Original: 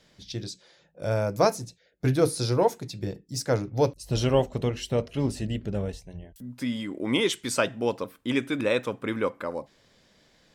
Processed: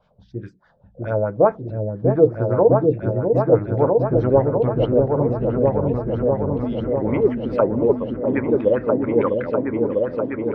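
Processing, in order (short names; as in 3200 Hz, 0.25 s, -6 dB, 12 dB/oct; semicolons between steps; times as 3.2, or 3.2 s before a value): envelope phaser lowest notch 310 Hz, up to 3800 Hz, full sweep at -21.5 dBFS; LFO low-pass sine 4.8 Hz 440–2000 Hz; vibrato 3.9 Hz 21 cents; treble ducked by the level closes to 2200 Hz, closed at -20 dBFS; repeats that get brighter 0.65 s, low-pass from 400 Hz, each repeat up 2 oct, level 0 dB; gain +2.5 dB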